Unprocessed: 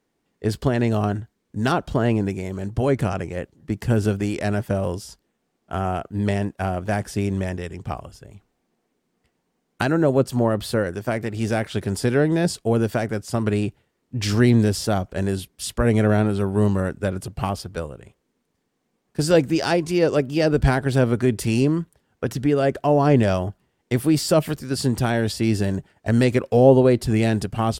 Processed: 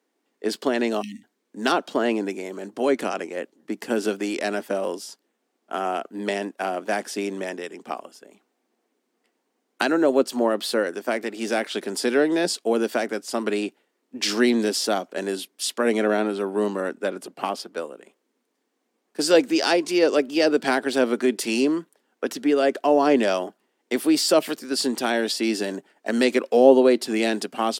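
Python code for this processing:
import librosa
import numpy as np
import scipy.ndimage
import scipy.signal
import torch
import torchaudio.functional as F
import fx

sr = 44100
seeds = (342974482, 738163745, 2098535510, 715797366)

y = fx.spec_erase(x, sr, start_s=1.02, length_s=0.22, low_hz=290.0, high_hz=1800.0)
y = fx.high_shelf(y, sr, hz=4100.0, db=-4.5, at=(15.97, 17.8))
y = scipy.signal.sosfilt(scipy.signal.butter(6, 240.0, 'highpass', fs=sr, output='sos'), y)
y = fx.dynamic_eq(y, sr, hz=4100.0, q=0.75, threshold_db=-41.0, ratio=4.0, max_db=5)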